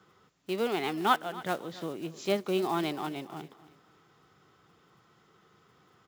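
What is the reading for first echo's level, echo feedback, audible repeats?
-18.0 dB, 33%, 2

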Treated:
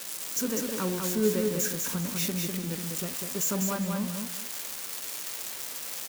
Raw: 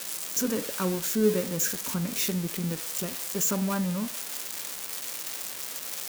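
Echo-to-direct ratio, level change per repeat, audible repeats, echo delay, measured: -4.0 dB, -13.0 dB, 2, 199 ms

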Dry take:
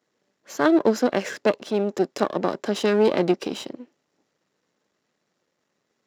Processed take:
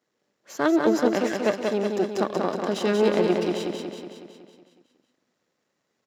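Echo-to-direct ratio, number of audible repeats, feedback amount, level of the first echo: -2.5 dB, 7, 57%, -4.0 dB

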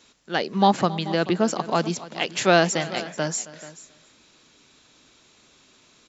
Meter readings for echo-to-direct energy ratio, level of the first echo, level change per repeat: -14.5 dB, -18.5 dB, no regular repeats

